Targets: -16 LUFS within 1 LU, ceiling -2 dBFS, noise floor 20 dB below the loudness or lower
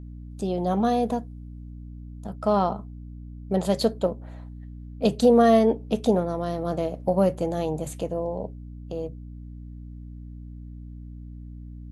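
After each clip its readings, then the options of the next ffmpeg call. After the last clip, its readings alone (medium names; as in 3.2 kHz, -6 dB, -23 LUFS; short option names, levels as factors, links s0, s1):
hum 60 Hz; highest harmonic 300 Hz; hum level -37 dBFS; loudness -24.5 LUFS; peak level -7.5 dBFS; loudness target -16.0 LUFS
-> -af "bandreject=f=60:t=h:w=6,bandreject=f=120:t=h:w=6,bandreject=f=180:t=h:w=6,bandreject=f=240:t=h:w=6,bandreject=f=300:t=h:w=6"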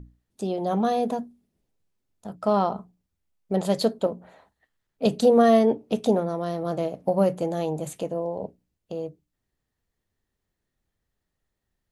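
hum not found; loudness -24.5 LUFS; peak level -8.0 dBFS; loudness target -16.0 LUFS
-> -af "volume=2.66,alimiter=limit=0.794:level=0:latency=1"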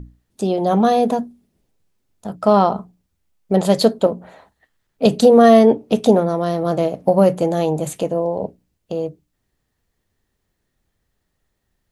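loudness -16.5 LUFS; peak level -2.0 dBFS; noise floor -73 dBFS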